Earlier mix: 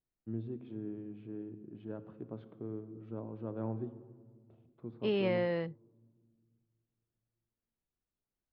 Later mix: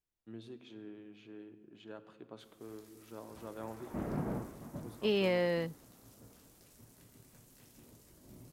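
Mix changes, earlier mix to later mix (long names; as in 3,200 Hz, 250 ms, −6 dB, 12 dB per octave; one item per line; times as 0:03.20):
first voice: add spectral tilt +4.5 dB per octave
background: unmuted
master: remove high-frequency loss of the air 250 metres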